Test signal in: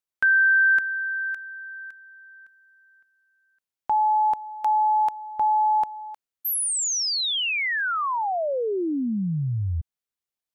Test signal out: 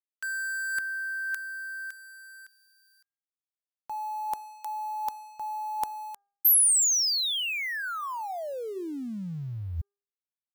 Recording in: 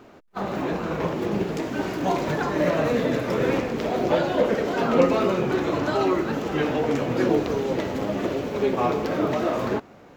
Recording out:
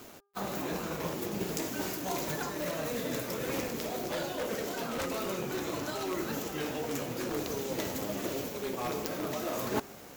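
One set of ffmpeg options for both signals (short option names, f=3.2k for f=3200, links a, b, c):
-filter_complex "[0:a]acrossover=split=700|5800[a][b][c];[c]acontrast=87[d];[a][b][d]amix=inputs=3:normalize=0,aeval=exprs='0.168*(abs(mod(val(0)/0.168+3,4)-2)-1)':c=same,areverse,acompressor=threshold=-33dB:ratio=16:attack=83:release=738:knee=6:detection=peak,areverse,aeval=exprs='sgn(val(0))*max(abs(val(0))-0.00119,0)':c=same,aemphasis=mode=production:type=75kf,bandreject=f=402.3:t=h:w=4,bandreject=f=804.6:t=h:w=4,bandreject=f=1.2069k:t=h:w=4,bandreject=f=1.6092k:t=h:w=4"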